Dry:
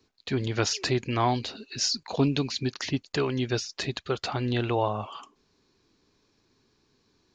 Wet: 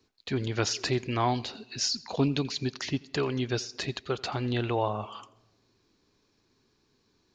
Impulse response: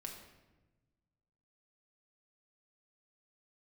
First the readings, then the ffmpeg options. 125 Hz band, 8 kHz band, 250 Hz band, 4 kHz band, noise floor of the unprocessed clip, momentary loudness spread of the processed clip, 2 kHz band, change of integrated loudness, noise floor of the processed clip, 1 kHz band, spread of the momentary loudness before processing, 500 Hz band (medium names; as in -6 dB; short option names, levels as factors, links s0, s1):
-2.0 dB, -2.0 dB, -2.0 dB, -2.0 dB, -70 dBFS, 7 LU, -2.0 dB, -2.0 dB, -71 dBFS, -2.0 dB, 7 LU, -2.0 dB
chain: -filter_complex "[0:a]asplit=2[s0][s1];[s1]highpass=f=190:p=1[s2];[1:a]atrim=start_sample=2205,adelay=85[s3];[s2][s3]afir=irnorm=-1:irlink=0,volume=0.141[s4];[s0][s4]amix=inputs=2:normalize=0,volume=0.794"